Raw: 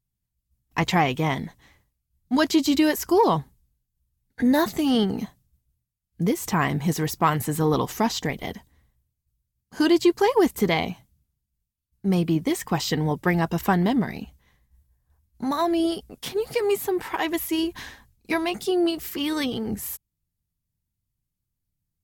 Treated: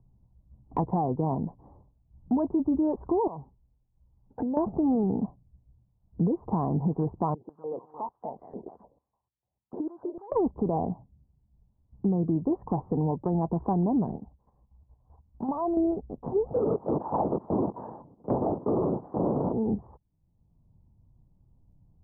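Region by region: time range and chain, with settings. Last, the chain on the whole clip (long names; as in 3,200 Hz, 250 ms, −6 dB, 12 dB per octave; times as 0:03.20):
0:03.27–0:04.57: low-shelf EQ 290 Hz −11 dB + downward compressor 12 to 1, threshold −32 dBFS
0:07.34–0:10.32: downward compressor 3 to 1, threshold −35 dBFS + single-tap delay 244 ms −7.5 dB + band-pass on a step sequencer 6.7 Hz 380–3,600 Hz
0:14.16–0:15.77: tilt shelving filter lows −8 dB, about 1,300 Hz + output level in coarse steps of 10 dB
0:16.52–0:19.53: each half-wave held at its own peak + linear-prediction vocoder at 8 kHz whisper + high-pass filter 190 Hz
whole clip: Butterworth low-pass 970 Hz 48 dB per octave; brickwall limiter −18 dBFS; multiband upward and downward compressor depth 70%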